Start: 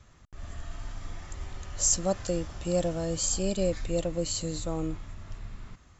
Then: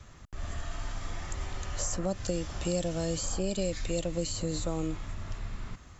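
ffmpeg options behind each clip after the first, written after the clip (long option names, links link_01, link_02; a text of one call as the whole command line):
ffmpeg -i in.wav -filter_complex "[0:a]acrossover=split=360|2100[link_01][link_02][link_03];[link_01]acompressor=threshold=-37dB:ratio=4[link_04];[link_02]acompressor=threshold=-41dB:ratio=4[link_05];[link_03]acompressor=threshold=-43dB:ratio=4[link_06];[link_04][link_05][link_06]amix=inputs=3:normalize=0,volume=5.5dB" out.wav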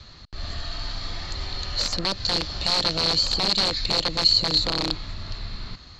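ffmpeg -i in.wav -af "aeval=exprs='(mod(15.8*val(0)+1,2)-1)/15.8':channel_layout=same,lowpass=frequency=4300:width_type=q:width=14,volume=3.5dB" out.wav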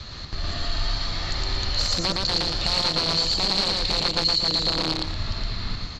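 ffmpeg -i in.wav -filter_complex "[0:a]acompressor=threshold=-34dB:ratio=2.5,asplit=2[link_01][link_02];[link_02]aecho=0:1:113.7|230.3:0.794|0.282[link_03];[link_01][link_03]amix=inputs=2:normalize=0,volume=7.5dB" out.wav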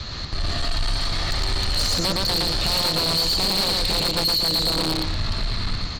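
ffmpeg -i in.wav -af "asoftclip=type=tanh:threshold=-23dB,volume=6dB" out.wav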